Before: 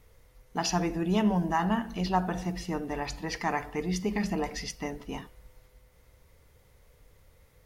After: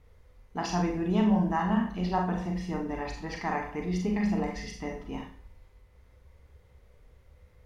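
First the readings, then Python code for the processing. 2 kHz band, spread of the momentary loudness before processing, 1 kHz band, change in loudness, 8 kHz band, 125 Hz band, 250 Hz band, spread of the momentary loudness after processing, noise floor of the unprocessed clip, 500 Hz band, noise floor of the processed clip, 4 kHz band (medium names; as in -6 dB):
-2.0 dB, 11 LU, -1.0 dB, +0.5 dB, -8.0 dB, +1.5 dB, +2.0 dB, 13 LU, -61 dBFS, -0.5 dB, -59 dBFS, -5.5 dB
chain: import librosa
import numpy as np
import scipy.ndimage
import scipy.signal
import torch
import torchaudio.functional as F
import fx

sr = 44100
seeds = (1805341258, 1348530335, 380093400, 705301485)

y = fx.lowpass(x, sr, hz=2600.0, slope=6)
y = fx.peak_eq(y, sr, hz=66.0, db=8.5, octaves=0.72)
y = fx.rev_schroeder(y, sr, rt60_s=0.4, comb_ms=30, drr_db=1.5)
y = y * 10.0 ** (-2.5 / 20.0)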